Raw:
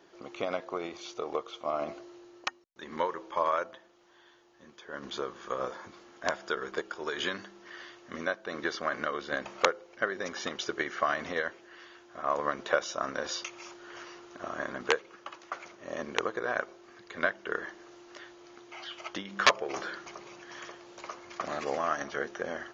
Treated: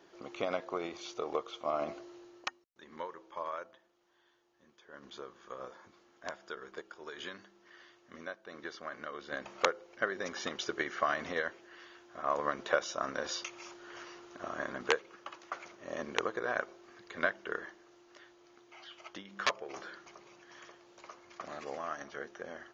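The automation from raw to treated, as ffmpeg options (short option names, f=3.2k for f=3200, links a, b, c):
-af "volume=7dB,afade=t=out:st=2.22:d=0.63:silence=0.334965,afade=t=in:st=9.03:d=0.8:silence=0.375837,afade=t=out:st=17.37:d=0.45:silence=0.473151"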